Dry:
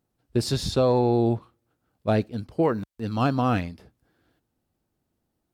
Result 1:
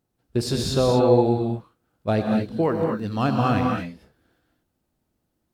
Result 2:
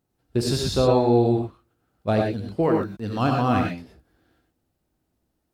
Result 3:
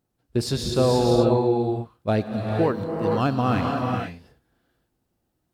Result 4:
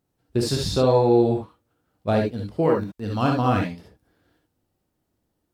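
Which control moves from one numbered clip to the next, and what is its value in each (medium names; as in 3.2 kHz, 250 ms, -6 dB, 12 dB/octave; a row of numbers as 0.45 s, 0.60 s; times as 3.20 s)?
gated-style reverb, gate: 260 ms, 140 ms, 520 ms, 90 ms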